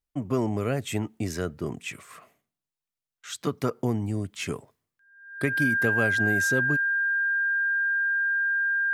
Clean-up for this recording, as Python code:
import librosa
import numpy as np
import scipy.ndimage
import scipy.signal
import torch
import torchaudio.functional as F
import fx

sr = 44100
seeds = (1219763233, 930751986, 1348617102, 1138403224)

y = fx.notch(x, sr, hz=1600.0, q=30.0)